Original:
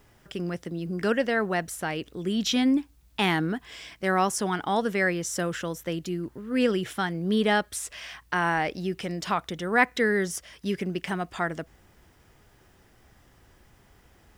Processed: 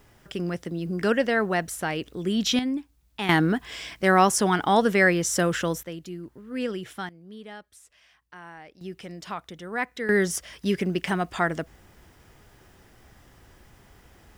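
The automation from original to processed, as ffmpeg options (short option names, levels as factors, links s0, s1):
-af "asetnsamples=n=441:p=0,asendcmd='2.59 volume volume -5.5dB;3.29 volume volume 5.5dB;5.83 volume volume -6dB;7.09 volume volume -19dB;8.81 volume volume -7.5dB;10.09 volume volume 4dB',volume=1.26"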